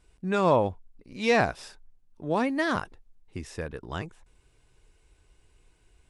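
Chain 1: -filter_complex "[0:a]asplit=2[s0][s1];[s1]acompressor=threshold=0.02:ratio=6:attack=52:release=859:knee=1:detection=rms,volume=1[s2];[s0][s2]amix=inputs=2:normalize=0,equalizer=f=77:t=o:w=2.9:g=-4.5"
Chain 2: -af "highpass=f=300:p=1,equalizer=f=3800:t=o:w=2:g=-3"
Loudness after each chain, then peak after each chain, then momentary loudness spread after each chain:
-26.5 LUFS, -29.0 LUFS; -9.0 dBFS, -11.0 dBFS; 19 LU, 21 LU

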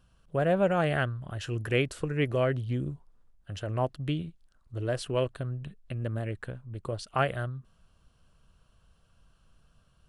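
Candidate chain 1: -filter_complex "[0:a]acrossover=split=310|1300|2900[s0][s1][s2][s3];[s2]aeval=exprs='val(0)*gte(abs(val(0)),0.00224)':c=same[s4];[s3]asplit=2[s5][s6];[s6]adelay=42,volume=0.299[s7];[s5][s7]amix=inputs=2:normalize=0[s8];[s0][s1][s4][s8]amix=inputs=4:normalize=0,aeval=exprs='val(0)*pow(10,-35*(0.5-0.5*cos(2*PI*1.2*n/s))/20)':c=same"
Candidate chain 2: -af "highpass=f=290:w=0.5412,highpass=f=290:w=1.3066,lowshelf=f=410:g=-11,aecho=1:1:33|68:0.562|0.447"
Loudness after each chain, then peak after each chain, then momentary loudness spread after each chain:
-36.0 LUFS, -33.0 LUFS; -15.0 dBFS, -13.5 dBFS; 19 LU, 18 LU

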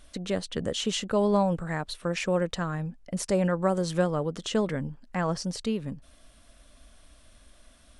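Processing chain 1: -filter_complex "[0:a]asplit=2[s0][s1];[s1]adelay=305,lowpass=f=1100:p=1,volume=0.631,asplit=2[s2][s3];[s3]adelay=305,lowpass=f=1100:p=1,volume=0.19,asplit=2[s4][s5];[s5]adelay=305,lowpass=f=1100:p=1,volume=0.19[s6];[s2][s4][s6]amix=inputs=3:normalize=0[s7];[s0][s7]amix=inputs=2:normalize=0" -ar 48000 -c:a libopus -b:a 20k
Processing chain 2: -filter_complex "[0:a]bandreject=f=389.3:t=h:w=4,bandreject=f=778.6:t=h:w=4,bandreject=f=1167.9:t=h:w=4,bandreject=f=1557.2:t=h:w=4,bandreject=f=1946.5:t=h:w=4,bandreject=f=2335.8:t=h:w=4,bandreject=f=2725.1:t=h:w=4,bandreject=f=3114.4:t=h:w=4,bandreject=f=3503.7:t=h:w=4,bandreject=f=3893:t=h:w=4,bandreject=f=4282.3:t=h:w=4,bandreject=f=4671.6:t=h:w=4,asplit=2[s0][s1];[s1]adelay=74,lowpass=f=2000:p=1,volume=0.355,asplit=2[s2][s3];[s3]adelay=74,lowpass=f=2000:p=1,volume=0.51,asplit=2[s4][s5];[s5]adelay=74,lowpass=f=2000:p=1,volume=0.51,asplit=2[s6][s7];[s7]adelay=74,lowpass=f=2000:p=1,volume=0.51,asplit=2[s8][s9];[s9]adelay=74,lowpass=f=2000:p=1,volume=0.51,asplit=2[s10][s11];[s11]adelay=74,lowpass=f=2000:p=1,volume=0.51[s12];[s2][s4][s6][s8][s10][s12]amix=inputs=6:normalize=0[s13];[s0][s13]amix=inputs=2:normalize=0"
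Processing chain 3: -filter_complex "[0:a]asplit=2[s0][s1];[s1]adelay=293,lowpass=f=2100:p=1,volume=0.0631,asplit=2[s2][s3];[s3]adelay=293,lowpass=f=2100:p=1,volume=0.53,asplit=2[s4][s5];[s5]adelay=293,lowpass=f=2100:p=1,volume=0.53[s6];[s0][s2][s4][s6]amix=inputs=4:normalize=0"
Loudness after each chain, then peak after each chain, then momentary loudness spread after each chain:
-28.0 LUFS, -28.0 LUFS, -28.5 LUFS; -10.0 dBFS, -11.5 dBFS, -12.0 dBFS; 8 LU, 8 LU, 10 LU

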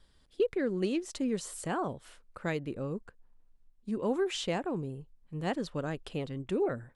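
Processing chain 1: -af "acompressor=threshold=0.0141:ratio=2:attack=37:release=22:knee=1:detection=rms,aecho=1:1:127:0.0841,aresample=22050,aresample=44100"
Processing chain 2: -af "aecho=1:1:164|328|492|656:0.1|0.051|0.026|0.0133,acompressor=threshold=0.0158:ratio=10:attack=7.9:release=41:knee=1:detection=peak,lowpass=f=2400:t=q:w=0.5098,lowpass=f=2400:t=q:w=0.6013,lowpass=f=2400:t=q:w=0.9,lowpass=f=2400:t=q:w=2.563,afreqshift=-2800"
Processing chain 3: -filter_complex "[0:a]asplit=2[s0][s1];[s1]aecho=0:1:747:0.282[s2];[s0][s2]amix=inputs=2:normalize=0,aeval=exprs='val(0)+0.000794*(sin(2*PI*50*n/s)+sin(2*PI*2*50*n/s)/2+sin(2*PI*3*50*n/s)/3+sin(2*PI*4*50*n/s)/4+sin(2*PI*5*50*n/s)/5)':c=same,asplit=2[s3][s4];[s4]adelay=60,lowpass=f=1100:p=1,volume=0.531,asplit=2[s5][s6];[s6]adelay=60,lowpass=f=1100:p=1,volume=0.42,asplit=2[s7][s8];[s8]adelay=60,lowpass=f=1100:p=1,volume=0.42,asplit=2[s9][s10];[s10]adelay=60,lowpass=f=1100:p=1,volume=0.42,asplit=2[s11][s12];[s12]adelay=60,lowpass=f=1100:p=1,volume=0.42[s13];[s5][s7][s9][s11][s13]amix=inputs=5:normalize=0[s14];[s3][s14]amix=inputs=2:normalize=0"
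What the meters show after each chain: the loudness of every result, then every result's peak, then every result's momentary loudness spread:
-37.0 LUFS, -37.0 LUFS, -33.0 LUFS; -23.5 dBFS, -25.5 dBFS, -17.5 dBFS; 9 LU, 13 LU, 14 LU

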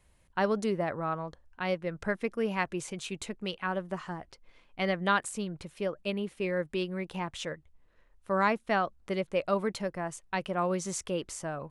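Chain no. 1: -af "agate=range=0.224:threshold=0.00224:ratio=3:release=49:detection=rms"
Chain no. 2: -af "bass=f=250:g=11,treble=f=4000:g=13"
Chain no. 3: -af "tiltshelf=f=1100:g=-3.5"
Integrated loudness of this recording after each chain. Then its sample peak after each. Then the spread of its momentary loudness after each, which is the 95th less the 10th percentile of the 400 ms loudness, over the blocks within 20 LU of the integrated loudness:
-32.5 LUFS, -28.5 LUFS, -33.5 LUFS; -13.5 dBFS, -11.0 dBFS, -12.0 dBFS; 10 LU, 8 LU, 10 LU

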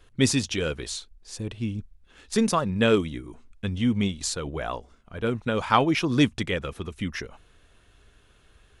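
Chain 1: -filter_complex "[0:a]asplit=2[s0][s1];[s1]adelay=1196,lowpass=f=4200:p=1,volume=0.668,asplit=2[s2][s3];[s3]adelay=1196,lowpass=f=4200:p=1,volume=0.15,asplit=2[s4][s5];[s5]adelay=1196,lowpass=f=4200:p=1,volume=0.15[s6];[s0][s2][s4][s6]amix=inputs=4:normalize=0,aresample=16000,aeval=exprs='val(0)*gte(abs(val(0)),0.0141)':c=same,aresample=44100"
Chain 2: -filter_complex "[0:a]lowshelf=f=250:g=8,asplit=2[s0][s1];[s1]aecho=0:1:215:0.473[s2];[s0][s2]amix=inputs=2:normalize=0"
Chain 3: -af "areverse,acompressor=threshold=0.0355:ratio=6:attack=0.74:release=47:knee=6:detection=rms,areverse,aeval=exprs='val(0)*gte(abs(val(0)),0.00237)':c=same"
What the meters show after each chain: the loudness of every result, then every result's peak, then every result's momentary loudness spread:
-25.5 LUFS, -22.5 LUFS, -35.5 LUFS; -4.0 dBFS, -3.5 dBFS, -23.0 dBFS; 14 LU, 15 LU, 9 LU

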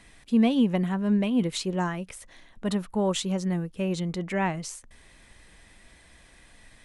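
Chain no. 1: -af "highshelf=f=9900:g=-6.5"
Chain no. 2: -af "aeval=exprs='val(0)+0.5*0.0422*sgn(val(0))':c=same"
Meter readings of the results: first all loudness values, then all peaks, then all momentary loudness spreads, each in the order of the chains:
-27.0 LUFS, -25.5 LUFS; -12.5 dBFS, -11.5 dBFS; 14 LU, 11 LU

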